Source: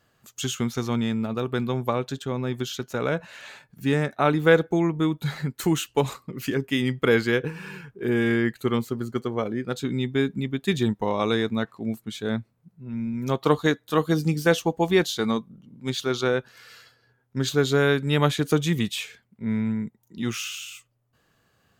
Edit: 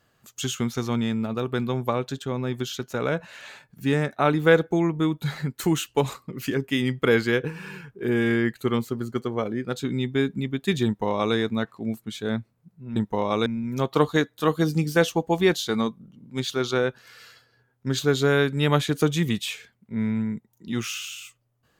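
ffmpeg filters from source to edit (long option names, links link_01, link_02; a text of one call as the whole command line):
ffmpeg -i in.wav -filter_complex "[0:a]asplit=3[link_01][link_02][link_03];[link_01]atrim=end=12.962[link_04];[link_02]atrim=start=10.848:end=11.352[link_05];[link_03]atrim=start=12.958[link_06];[link_04][link_05]acrossfade=duration=0.004:curve1=hsin:curve2=hsin[link_07];[link_07][link_06]acrossfade=duration=0.004:curve1=hsin:curve2=hsin" out.wav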